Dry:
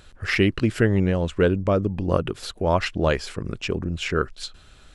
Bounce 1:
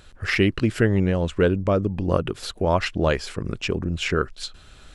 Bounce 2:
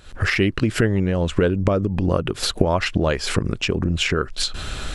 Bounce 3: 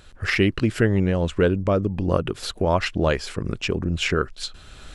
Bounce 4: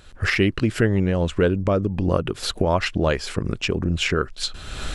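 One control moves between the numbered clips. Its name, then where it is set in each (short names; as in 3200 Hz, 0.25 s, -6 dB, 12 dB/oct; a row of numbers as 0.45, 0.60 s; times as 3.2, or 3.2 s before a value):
recorder AGC, rising by: 5.1, 87, 13, 34 dB/s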